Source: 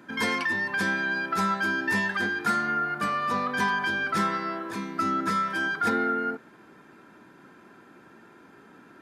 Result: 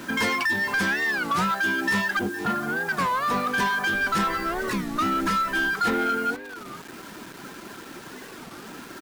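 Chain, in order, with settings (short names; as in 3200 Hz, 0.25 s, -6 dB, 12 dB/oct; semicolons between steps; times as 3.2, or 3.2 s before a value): 2.19–2.91 LPF 1000 Hz 12 dB/oct; reverb removal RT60 0.8 s; in parallel at +2 dB: compressor, threshold -40 dBFS, peak gain reduction 17 dB; 3.93–5.71 on the sum: added noise brown -46 dBFS; soft clip -25 dBFS, distortion -12 dB; bit-crush 8-bit; echo 0.464 s -15 dB; record warp 33 1/3 rpm, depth 250 cents; gain +5.5 dB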